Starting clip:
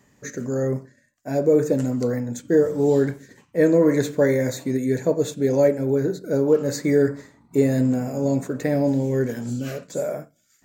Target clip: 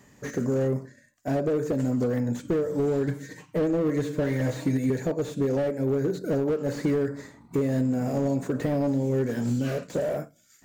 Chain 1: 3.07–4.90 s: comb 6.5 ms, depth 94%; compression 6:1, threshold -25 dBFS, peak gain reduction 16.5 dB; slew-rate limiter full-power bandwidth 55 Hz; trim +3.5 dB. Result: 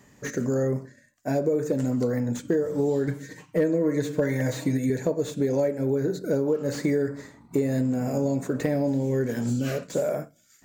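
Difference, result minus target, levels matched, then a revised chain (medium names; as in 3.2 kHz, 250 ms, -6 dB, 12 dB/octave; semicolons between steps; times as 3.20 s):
slew-rate limiter: distortion -13 dB
3.07–4.90 s: comb 6.5 ms, depth 94%; compression 6:1, threshold -25 dBFS, peak gain reduction 16.5 dB; slew-rate limiter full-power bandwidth 24 Hz; trim +3.5 dB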